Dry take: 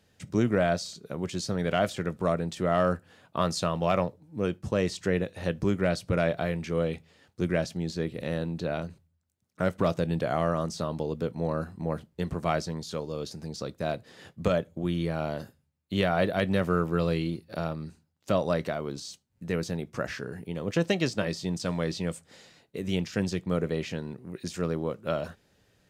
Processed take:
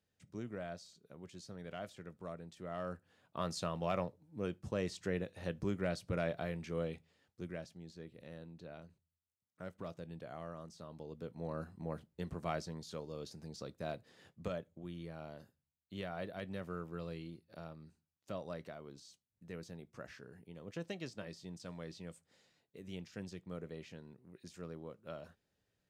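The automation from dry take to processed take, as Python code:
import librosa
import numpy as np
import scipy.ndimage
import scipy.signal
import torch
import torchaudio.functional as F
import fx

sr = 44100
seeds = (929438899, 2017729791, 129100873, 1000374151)

y = fx.gain(x, sr, db=fx.line((2.58, -19.5), (3.56, -10.5), (6.84, -10.5), (7.78, -20.0), (10.8, -20.0), (11.61, -11.0), (13.96, -11.0), (14.86, -17.5)))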